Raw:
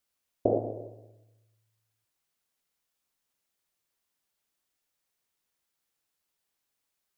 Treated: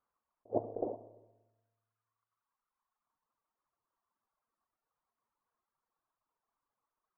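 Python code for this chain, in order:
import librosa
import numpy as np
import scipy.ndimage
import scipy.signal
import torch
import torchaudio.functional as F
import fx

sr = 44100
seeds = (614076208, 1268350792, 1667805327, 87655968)

y = fx.lowpass_res(x, sr, hz=1100.0, q=4.1)
y = fx.comb_fb(y, sr, f0_hz=230.0, decay_s=1.4, harmonics='all', damping=0.0, mix_pct=70)
y = fx.echo_multitap(y, sr, ms=(307, 369), db=(-11.5, -10.0))
y = fx.dereverb_blind(y, sr, rt60_s=1.9)
y = fx.attack_slew(y, sr, db_per_s=520.0)
y = y * 10.0 ** (9.5 / 20.0)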